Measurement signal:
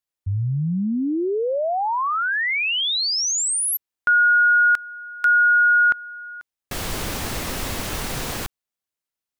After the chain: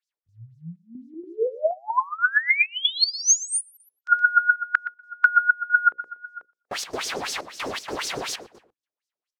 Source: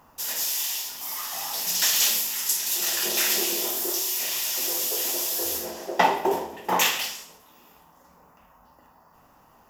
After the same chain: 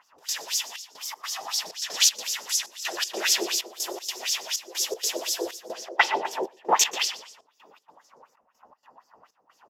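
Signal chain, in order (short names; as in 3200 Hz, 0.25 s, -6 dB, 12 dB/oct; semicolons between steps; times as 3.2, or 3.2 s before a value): notches 60/120/180/240/300/360/420/480/540 Hz; LFO band-pass sine 4 Hz 400–6000 Hz; harmonic-percussive split percussive +6 dB; feedback echo 0.12 s, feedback 18%, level -16.5 dB; step gate "xx.xxxxx.." 158 bpm -12 dB; gain +3.5 dB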